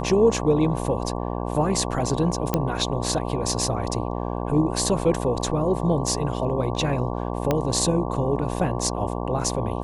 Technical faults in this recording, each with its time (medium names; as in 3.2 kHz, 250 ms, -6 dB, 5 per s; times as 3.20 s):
buzz 60 Hz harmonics 19 -28 dBFS
2.54 s: pop -7 dBFS
7.51 s: pop -8 dBFS